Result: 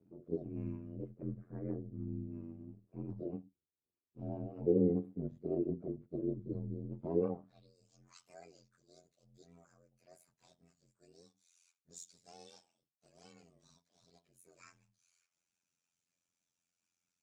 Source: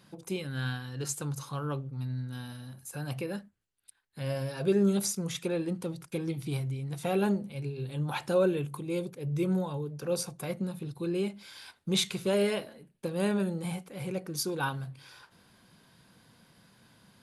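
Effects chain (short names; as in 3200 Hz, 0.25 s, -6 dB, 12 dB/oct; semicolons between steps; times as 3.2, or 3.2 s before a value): inharmonic rescaling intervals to 125%; AM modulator 87 Hz, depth 90%; tilt -3.5 dB/oct; band-pass sweep 350 Hz -> 6500 Hz, 7.17–7.77; gain +1 dB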